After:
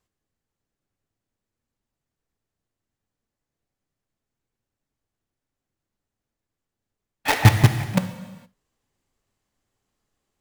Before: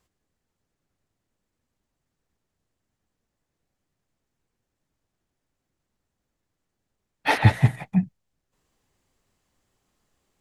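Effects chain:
in parallel at −4 dB: log-companded quantiser 2 bits
on the sum: reverb whose tail is shaped and stops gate 490 ms falling, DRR 8.5 dB
level −5.5 dB

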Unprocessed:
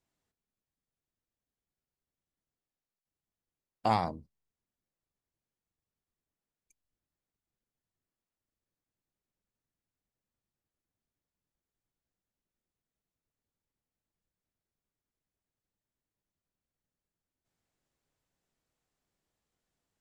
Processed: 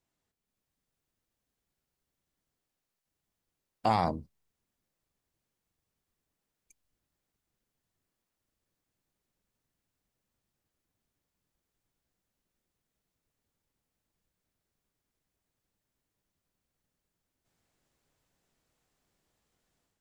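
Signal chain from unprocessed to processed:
brickwall limiter −21.5 dBFS, peak gain reduction 8 dB
automatic gain control gain up to 7 dB

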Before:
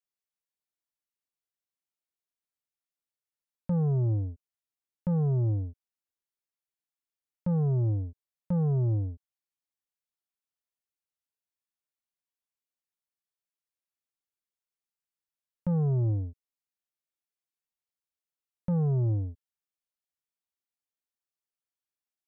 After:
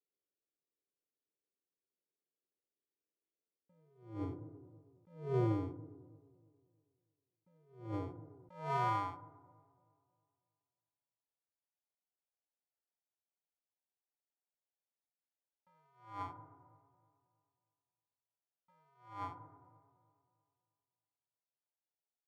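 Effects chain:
adaptive Wiener filter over 15 samples
decimation without filtering 40×
feedback delay network reverb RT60 1.1 s, low-frequency decay 1.25×, high-frequency decay 0.35×, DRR 15 dB
band-pass filter sweep 400 Hz → 960 Hz, 0:07.79–0:08.88
on a send: delay with a low-pass on its return 318 ms, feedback 39%, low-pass 780 Hz, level −22.5 dB
on the sum: level that may rise only so fast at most 120 dB per second
level +8 dB

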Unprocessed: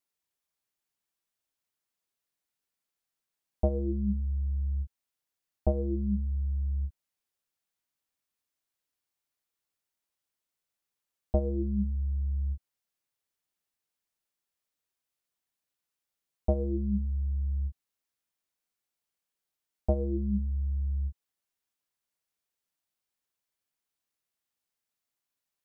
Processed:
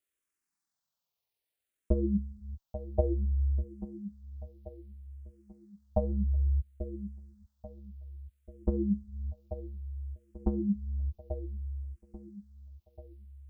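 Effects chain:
tempo change 1.9×
delay with a low-pass on its return 838 ms, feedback 47%, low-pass 920 Hz, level −11.5 dB
frequency shifter mixed with the dry sound −0.6 Hz
level +3.5 dB

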